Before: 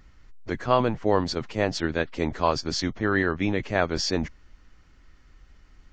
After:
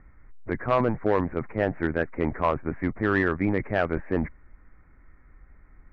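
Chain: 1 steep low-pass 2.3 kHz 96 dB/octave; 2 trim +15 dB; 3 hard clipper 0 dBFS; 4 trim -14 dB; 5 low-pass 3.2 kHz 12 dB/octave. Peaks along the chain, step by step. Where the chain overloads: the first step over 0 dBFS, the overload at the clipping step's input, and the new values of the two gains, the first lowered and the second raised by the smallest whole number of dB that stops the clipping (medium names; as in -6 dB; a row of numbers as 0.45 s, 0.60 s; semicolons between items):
-6.0 dBFS, +9.0 dBFS, 0.0 dBFS, -14.0 dBFS, -13.5 dBFS; step 2, 9.0 dB; step 2 +6 dB, step 4 -5 dB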